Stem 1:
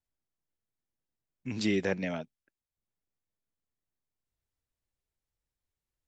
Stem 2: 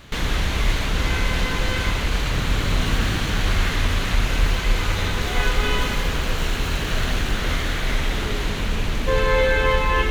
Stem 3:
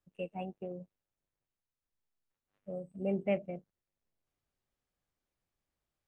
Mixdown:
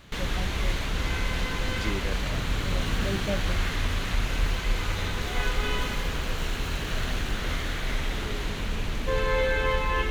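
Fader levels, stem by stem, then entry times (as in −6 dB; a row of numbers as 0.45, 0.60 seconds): −6.0, −6.5, −0.5 decibels; 0.20, 0.00, 0.00 seconds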